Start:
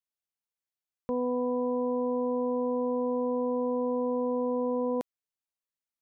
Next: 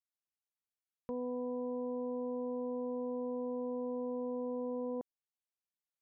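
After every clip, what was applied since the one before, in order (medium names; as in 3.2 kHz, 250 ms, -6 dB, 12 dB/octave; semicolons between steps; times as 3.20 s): low-pass that closes with the level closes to 880 Hz, closed at -29.5 dBFS; trim -8.5 dB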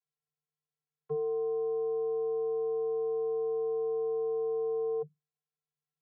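vocoder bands 32, square 150 Hz; trim +8 dB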